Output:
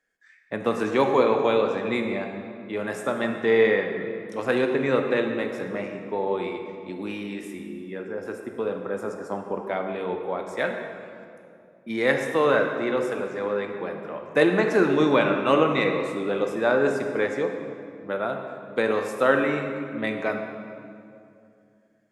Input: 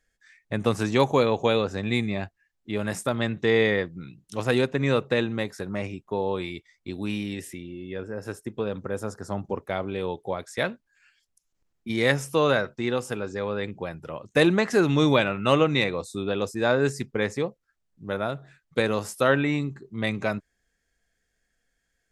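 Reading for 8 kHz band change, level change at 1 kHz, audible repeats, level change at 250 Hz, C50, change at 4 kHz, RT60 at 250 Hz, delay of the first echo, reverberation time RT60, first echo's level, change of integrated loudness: no reading, +2.5 dB, no echo, 0.0 dB, 5.0 dB, -5.0 dB, 2.9 s, no echo, 2.5 s, no echo, +1.0 dB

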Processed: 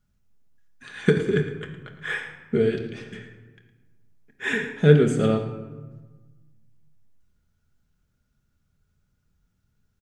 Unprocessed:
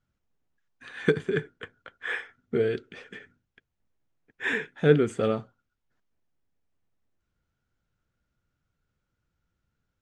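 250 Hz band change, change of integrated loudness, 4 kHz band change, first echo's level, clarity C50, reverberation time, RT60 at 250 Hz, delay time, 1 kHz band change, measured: +6.0 dB, +4.5 dB, +4.0 dB, -13.0 dB, 7.0 dB, 1.3 s, 1.8 s, 111 ms, +1.5 dB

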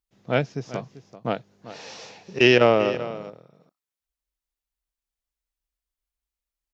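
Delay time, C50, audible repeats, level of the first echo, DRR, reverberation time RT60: 390 ms, no reverb, 1, -15.0 dB, no reverb, no reverb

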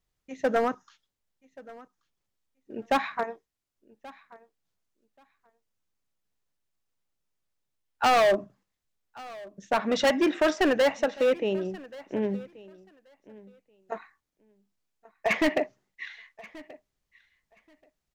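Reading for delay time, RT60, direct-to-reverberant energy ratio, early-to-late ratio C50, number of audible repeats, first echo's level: 1131 ms, no reverb, no reverb, no reverb, 1, -21.0 dB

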